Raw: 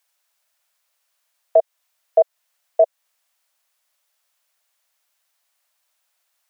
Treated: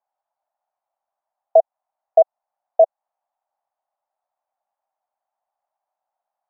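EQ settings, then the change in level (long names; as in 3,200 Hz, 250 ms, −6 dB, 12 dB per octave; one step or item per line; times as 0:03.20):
low-pass with resonance 780 Hz, resonance Q 4.9
parametric band 480 Hz −4.5 dB 0.47 octaves
−6.0 dB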